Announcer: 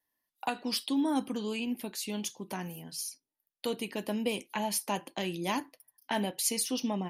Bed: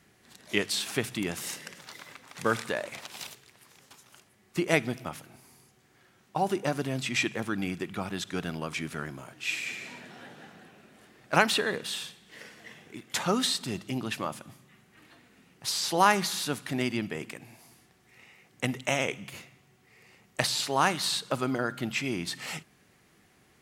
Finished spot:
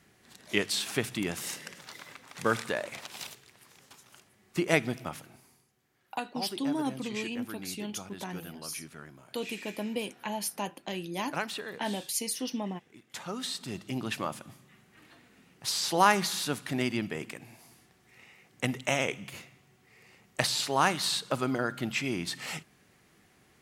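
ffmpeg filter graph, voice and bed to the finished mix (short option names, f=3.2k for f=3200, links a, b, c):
-filter_complex "[0:a]adelay=5700,volume=-2dB[a];[1:a]volume=10dB,afade=t=out:st=5.23:d=0.43:silence=0.298538,afade=t=in:st=13.33:d=0.76:silence=0.298538[b];[a][b]amix=inputs=2:normalize=0"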